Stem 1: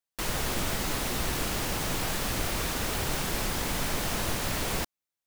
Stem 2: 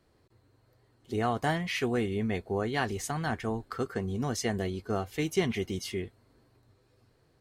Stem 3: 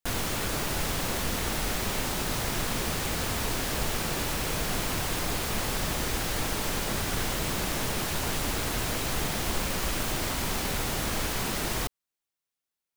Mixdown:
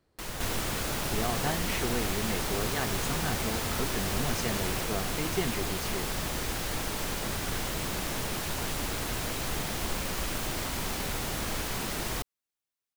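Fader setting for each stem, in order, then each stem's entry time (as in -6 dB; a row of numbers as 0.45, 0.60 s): -7.0, -4.0, -3.0 dB; 0.00, 0.00, 0.35 s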